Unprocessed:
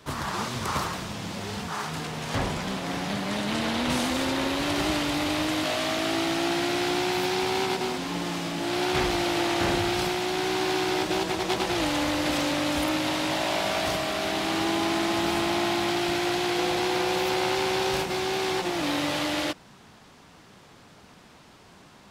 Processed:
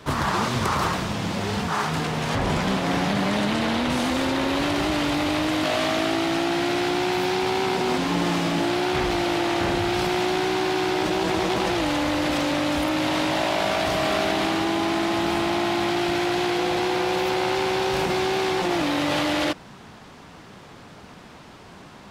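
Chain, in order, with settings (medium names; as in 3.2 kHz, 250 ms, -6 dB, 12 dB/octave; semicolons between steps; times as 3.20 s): treble shelf 3.9 kHz -6.5 dB; in parallel at 0 dB: compressor with a negative ratio -30 dBFS, ratio -0.5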